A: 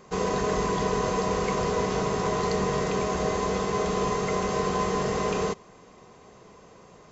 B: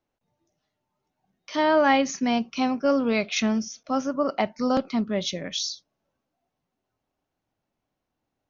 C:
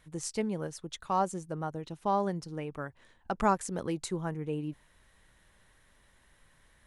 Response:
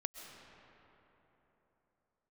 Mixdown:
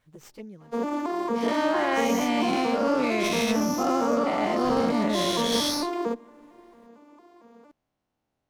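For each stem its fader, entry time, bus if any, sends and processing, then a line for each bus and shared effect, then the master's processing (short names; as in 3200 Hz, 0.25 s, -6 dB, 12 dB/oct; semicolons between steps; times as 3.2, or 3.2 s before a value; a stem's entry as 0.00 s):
-1.0 dB, 0.60 s, no bus, send -17.5 dB, arpeggiated vocoder major triad, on A#3, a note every 0.227 s
-5.5 dB, 0.00 s, bus A, no send, spectral dilation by 0.24 s
-2.5 dB, 0.00 s, bus A, no send, high shelf 6100 Hz -2.5 dB; bit-crush 12-bit; envelope flanger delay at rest 9.1 ms, full sweep at -26.5 dBFS; auto duck -19 dB, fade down 1.80 s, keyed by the second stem
bus A: 0.0 dB, vocal rider 0.5 s; limiter -17 dBFS, peak gain reduction 6 dB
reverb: on, RT60 3.8 s, pre-delay 90 ms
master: running maximum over 3 samples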